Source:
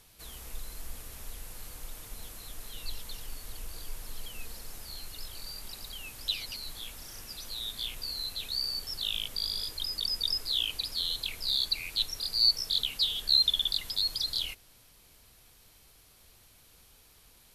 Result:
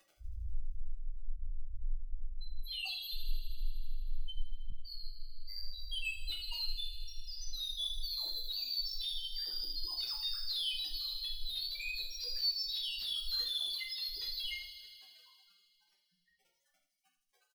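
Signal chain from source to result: 2.62–3.14 Chebyshev high-pass 900 Hz, order 3; 13.38–13.88 bell 5800 Hz +12.5 dB 2.8 oct; compressor 4:1, threshold -39 dBFS, peak gain reduction 23.5 dB; requantised 8-bit, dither none; loudest bins only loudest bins 1; overdrive pedal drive 30 dB, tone 1800 Hz, clips at -34.5 dBFS; doubler 49 ms -13 dB; thin delay 79 ms, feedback 82%, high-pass 4400 Hz, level -7.5 dB; shoebox room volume 43 m³, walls mixed, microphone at 0.8 m; 4.7–5.78 detuned doubles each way 37 cents; gain +6 dB

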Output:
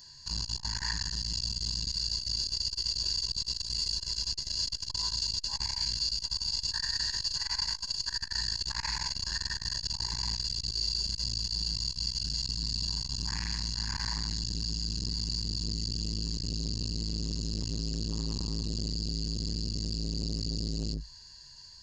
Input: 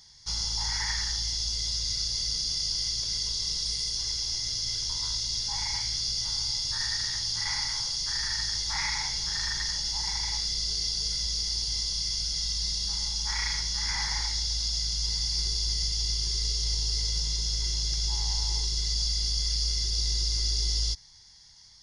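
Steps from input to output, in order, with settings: ripple EQ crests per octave 1.4, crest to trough 17 dB; limiter -19.5 dBFS, peak gain reduction 8.5 dB; core saturation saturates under 280 Hz

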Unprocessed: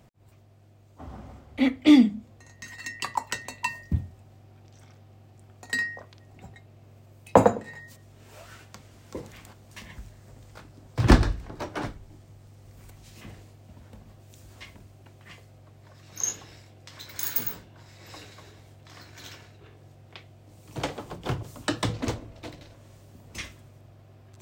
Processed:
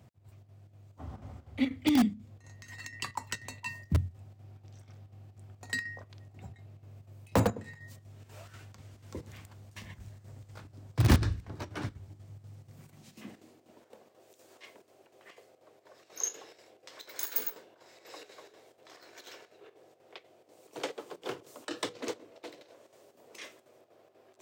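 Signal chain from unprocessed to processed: chopper 4.1 Hz, depth 60%, duty 75%; high-pass sweep 86 Hz -> 440 Hz, 12.32–13.91; dynamic EQ 700 Hz, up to -7 dB, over -43 dBFS, Q 0.89; in parallel at -8.5 dB: wrapped overs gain 12.5 dB; on the sum: gain -7 dB

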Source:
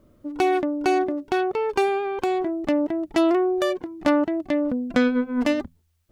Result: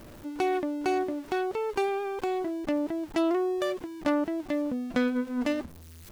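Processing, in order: zero-crossing step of -35 dBFS; gain -7 dB

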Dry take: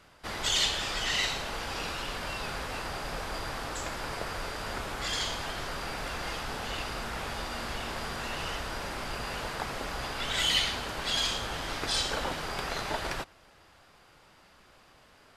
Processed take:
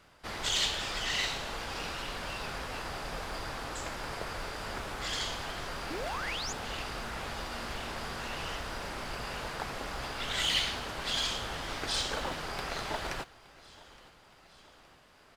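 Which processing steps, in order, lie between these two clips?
painted sound rise, 5.9–6.53, 280–7300 Hz -36 dBFS; modulation noise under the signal 29 dB; on a send: feedback echo 0.868 s, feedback 57%, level -22 dB; on the sum: Doppler distortion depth 0.19 ms; gain -2.5 dB

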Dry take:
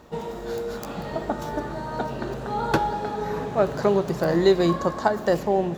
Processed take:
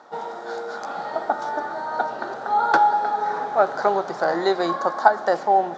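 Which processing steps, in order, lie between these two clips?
speaker cabinet 420–6200 Hz, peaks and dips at 430 Hz -3 dB, 790 Hz +10 dB, 1400 Hz +9 dB, 2700 Hz -10 dB; gain +1 dB

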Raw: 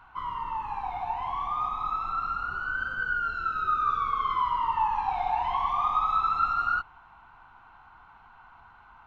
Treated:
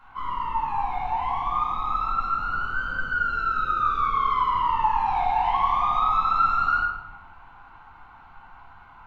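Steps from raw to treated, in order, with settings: notches 50/100 Hz; shoebox room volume 300 m³, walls mixed, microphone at 2.2 m; gain -1.5 dB

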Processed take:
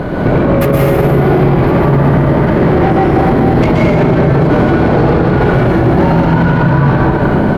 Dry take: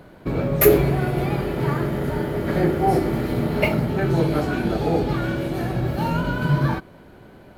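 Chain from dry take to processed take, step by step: LPF 1500 Hz 6 dB/oct; compressor 3:1, threshold -37 dBFS, peak gain reduction 20 dB; soft clip -36.5 dBFS, distortion -10 dB; on a send: echo 1.058 s -21.5 dB; on the sum: plate-style reverb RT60 2.7 s, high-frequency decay 0.55×, pre-delay 0.11 s, DRR -5.5 dB; maximiser +30 dB; gain -1 dB

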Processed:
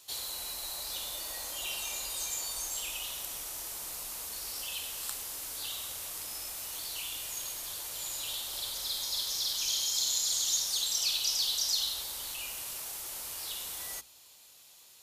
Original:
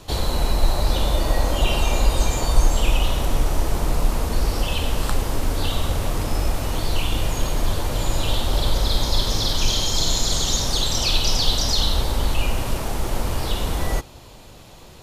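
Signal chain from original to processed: HPF 74 Hz 6 dB/oct; pre-emphasis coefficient 0.97; notches 60/120/180/240 Hz; gain -3 dB

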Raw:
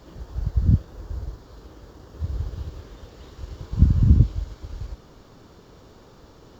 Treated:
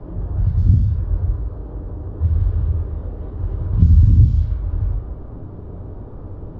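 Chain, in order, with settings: low-pass opened by the level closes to 780 Hz, open at -14 dBFS; bell 73 Hz +10 dB 1.9 oct; in parallel at +1 dB: compressor, threshold -19 dBFS, peak gain reduction 17.5 dB; on the sum: downsampling 16000 Hz; on a send at -4 dB: reverb RT60 0.40 s, pre-delay 3 ms; on the sum: three-band squash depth 40%; gain -3.5 dB

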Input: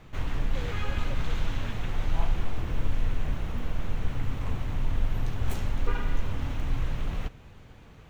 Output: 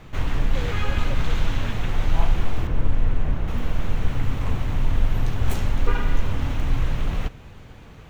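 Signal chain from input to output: 2.67–3.48 high shelf 2600 Hz -10.5 dB; gain +6.5 dB

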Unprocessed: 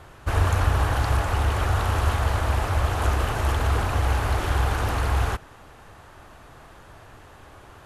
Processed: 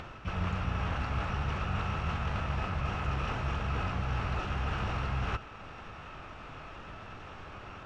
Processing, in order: small resonant body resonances 1300/2800 Hz, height 10 dB, ringing for 30 ms; on a send at -23.5 dB: reverb RT60 0.60 s, pre-delay 80 ms; on the sum: downsampling 22050 Hz; reverse; compressor 6:1, threshold -28 dBFS, peak gain reduction 13 dB; reverse; harmoniser +12 st -5 dB; air absorption 140 m; upward compressor, threshold -37 dBFS; gain -2.5 dB

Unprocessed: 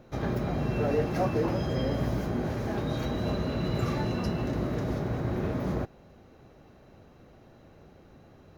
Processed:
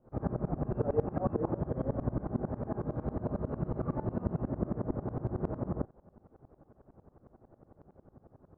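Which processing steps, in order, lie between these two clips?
LPF 1200 Hz 24 dB/oct; dB-ramp tremolo swelling 11 Hz, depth 23 dB; gain +2.5 dB

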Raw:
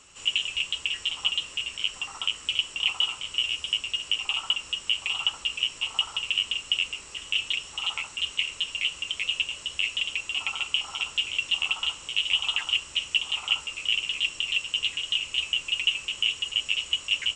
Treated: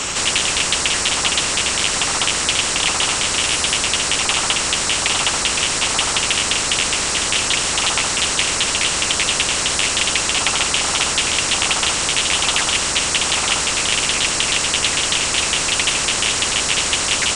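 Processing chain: spectral compressor 4:1; gain +7.5 dB

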